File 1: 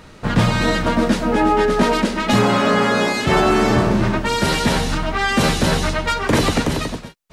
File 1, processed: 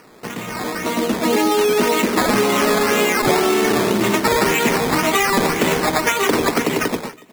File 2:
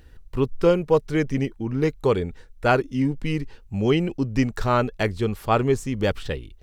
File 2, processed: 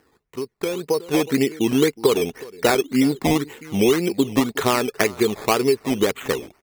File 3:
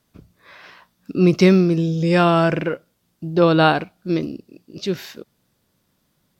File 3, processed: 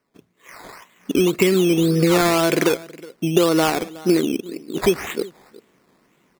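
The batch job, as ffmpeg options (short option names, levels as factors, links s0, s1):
-filter_complex "[0:a]highpass=270,equalizer=f=410:t=q:w=4:g=4,equalizer=f=580:t=q:w=4:g=-6,equalizer=f=840:t=q:w=4:g=-3,equalizer=f=1400:t=q:w=4:g=-4,equalizer=f=2200:t=q:w=4:g=6,equalizer=f=3100:t=q:w=4:g=-5,lowpass=f=3700:w=0.5412,lowpass=f=3700:w=1.3066,bandreject=f=1600:w=13,acompressor=threshold=0.0501:ratio=16,asplit=2[s0][s1];[s1]adelay=367.3,volume=0.1,highshelf=f=4000:g=-8.27[s2];[s0][s2]amix=inputs=2:normalize=0,acrusher=samples=12:mix=1:aa=0.000001:lfo=1:lforange=7.2:lforate=1.9,dynaudnorm=f=370:g=5:m=4.73"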